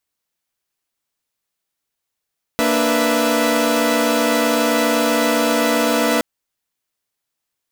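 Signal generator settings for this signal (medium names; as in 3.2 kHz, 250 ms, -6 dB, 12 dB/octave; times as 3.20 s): chord A#3/D4/B4/E5 saw, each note -18 dBFS 3.62 s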